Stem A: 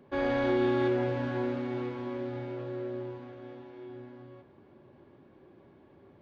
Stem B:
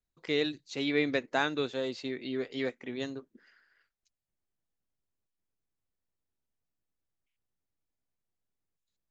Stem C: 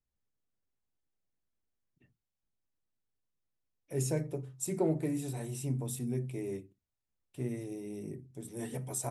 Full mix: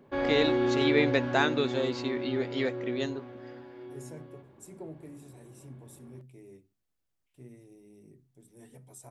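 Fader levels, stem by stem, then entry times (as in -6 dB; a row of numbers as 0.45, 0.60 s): 0.0, +3.0, -13.5 dB; 0.00, 0.00, 0.00 s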